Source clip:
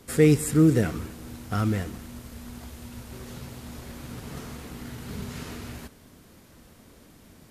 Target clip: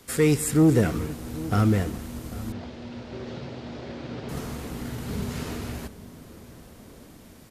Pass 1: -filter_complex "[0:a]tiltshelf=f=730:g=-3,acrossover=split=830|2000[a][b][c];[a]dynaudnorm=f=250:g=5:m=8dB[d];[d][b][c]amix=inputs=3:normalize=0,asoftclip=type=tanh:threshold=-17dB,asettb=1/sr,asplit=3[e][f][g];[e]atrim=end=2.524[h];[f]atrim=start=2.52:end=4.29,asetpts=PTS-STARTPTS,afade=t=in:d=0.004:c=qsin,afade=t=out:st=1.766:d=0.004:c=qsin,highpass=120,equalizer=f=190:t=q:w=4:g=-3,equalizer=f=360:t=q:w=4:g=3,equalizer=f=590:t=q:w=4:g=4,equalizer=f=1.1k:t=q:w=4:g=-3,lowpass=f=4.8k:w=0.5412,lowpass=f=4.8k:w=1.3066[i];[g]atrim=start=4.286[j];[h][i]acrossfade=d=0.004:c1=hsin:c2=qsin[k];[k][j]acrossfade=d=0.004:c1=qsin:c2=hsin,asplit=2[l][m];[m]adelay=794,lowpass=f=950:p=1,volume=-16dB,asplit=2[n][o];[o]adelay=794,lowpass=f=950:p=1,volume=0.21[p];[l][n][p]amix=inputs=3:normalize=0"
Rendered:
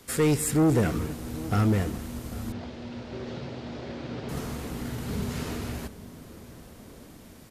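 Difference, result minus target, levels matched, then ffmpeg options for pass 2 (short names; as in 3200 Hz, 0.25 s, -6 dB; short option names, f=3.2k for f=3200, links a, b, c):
soft clip: distortion +9 dB
-filter_complex "[0:a]tiltshelf=f=730:g=-3,acrossover=split=830|2000[a][b][c];[a]dynaudnorm=f=250:g=5:m=8dB[d];[d][b][c]amix=inputs=3:normalize=0,asoftclip=type=tanh:threshold=-10dB,asettb=1/sr,asplit=3[e][f][g];[e]atrim=end=2.524[h];[f]atrim=start=2.52:end=4.29,asetpts=PTS-STARTPTS,afade=t=in:d=0.004:c=qsin,afade=t=out:st=1.766:d=0.004:c=qsin,highpass=120,equalizer=f=190:t=q:w=4:g=-3,equalizer=f=360:t=q:w=4:g=3,equalizer=f=590:t=q:w=4:g=4,equalizer=f=1.1k:t=q:w=4:g=-3,lowpass=f=4.8k:w=0.5412,lowpass=f=4.8k:w=1.3066[i];[g]atrim=start=4.286[j];[h][i]acrossfade=d=0.004:c1=hsin:c2=qsin[k];[k][j]acrossfade=d=0.004:c1=qsin:c2=hsin,asplit=2[l][m];[m]adelay=794,lowpass=f=950:p=1,volume=-16dB,asplit=2[n][o];[o]adelay=794,lowpass=f=950:p=1,volume=0.21[p];[l][n][p]amix=inputs=3:normalize=0"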